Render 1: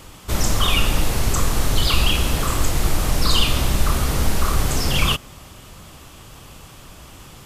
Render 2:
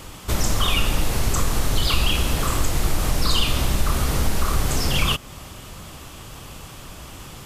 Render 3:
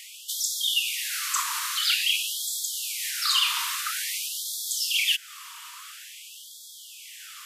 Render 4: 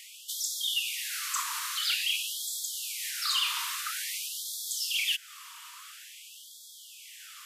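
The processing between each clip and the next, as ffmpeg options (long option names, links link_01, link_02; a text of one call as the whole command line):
ffmpeg -i in.wav -af "acompressor=threshold=-27dB:ratio=1.5,volume=3dB" out.wav
ffmpeg -i in.wav -af "afftfilt=real='re*gte(b*sr/1024,890*pow(3300/890,0.5+0.5*sin(2*PI*0.49*pts/sr)))':imag='im*gte(b*sr/1024,890*pow(3300/890,0.5+0.5*sin(2*PI*0.49*pts/sr)))':win_size=1024:overlap=0.75,volume=1dB" out.wav
ffmpeg -i in.wav -af "asoftclip=type=tanh:threshold=-13dB,volume=-4.5dB" out.wav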